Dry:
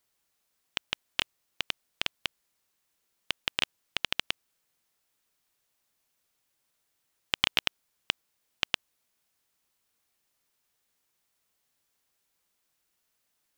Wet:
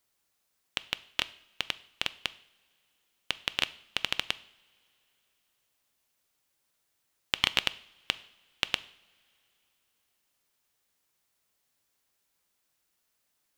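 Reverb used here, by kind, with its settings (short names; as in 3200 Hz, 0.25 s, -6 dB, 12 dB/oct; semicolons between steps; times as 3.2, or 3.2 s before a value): two-slope reverb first 0.58 s, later 3.4 s, from -22 dB, DRR 15 dB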